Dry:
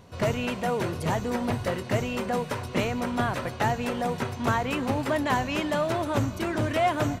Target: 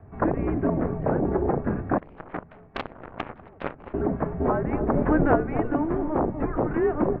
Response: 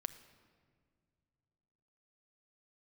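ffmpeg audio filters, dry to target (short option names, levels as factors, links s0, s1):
-filter_complex "[0:a]equalizer=f=210:t=o:w=0.24:g=11.5,acrossover=split=230|1100[s0][s1][s2];[s0]aeval=exprs='0.141*sin(PI/2*7.08*val(0)/0.141)':c=same[s3];[s1]aecho=1:1:49|243:0.141|0.562[s4];[s2]flanger=delay=2.1:depth=2:regen=77:speed=0.39:shape=triangular[s5];[s3][s4][s5]amix=inputs=3:normalize=0,highpass=f=280:t=q:w=0.5412,highpass=f=280:t=q:w=1.307,lowpass=f=2100:t=q:w=0.5176,lowpass=f=2100:t=q:w=0.7071,lowpass=f=2100:t=q:w=1.932,afreqshift=-310,lowshelf=f=120:g=-11.5,asplit=2[s6][s7];[s7]acompressor=threshold=0.0224:ratio=6,volume=0.708[s8];[s6][s8]amix=inputs=2:normalize=0,asettb=1/sr,asplit=3[s9][s10][s11];[s9]atrim=end=1.984[s12];[s10]atrim=start=1.98:end=3.94,asetpts=PTS-STARTPTS,afade=t=in:d=0.004:c=qsin,afade=t=out:st=1.956:d=0.004:c=qsin,aeval=exprs='0.299*(cos(1*acos(clip(val(0)/0.299,-1,1)))-cos(1*PI/2))+0.106*(cos(3*acos(clip(val(0)/0.299,-1,1)))-cos(3*PI/2))+0.00473*(cos(7*acos(clip(val(0)/0.299,-1,1)))-cos(7*PI/2))+0.00211*(cos(8*acos(clip(val(0)/0.299,-1,1)))-cos(8*PI/2))':c=same[s13];[s11]atrim=start=3.936[s14];[s12][s13]acrossfade=d=0.004:c1=hsin:c2=qsin[s15];[s15][s14]acrossfade=d=0.004:c1=qsin:c2=hsin,asettb=1/sr,asplit=3[s16][s17][s18];[s16]atrim=end=4.944[s19];[s17]atrim=start=4.94:end=5.36,asetpts=PTS-STARTPTS,afade=t=in:d=0.004:c=qsin,afade=t=out:st=0.416:d=0.004:c=qsin,acontrast=31[s20];[s18]atrim=start=5.356[s21];[s19][s20]acrossfade=d=0.004:c1=hsin:c2=qsin[s22];[s22][s21]acrossfade=d=0.004:c1=qsin:c2=hsin"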